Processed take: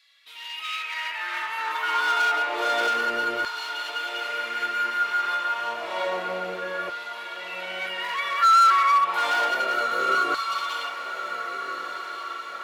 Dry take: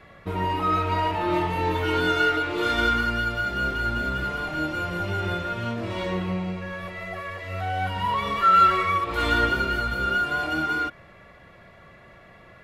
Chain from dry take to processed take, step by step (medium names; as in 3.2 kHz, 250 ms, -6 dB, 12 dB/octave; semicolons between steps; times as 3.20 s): hard clipper -21.5 dBFS, distortion -10 dB; LFO high-pass saw down 0.29 Hz 370–4300 Hz; echo that smears into a reverb 1562 ms, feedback 54%, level -9.5 dB